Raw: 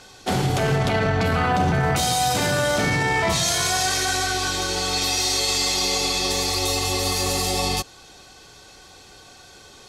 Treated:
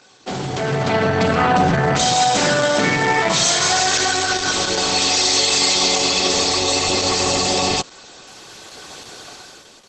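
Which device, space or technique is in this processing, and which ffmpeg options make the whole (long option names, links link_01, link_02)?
video call: -filter_complex "[0:a]asplit=3[link_01][link_02][link_03];[link_01]afade=type=out:start_time=2.2:duration=0.02[link_04];[link_02]highpass=130,afade=type=in:start_time=2.2:duration=0.02,afade=type=out:start_time=3.58:duration=0.02[link_05];[link_03]afade=type=in:start_time=3.58:duration=0.02[link_06];[link_04][link_05][link_06]amix=inputs=3:normalize=0,highpass=150,dynaudnorm=framelen=310:gausssize=5:maxgain=15dB,volume=-2.5dB" -ar 48000 -c:a libopus -b:a 12k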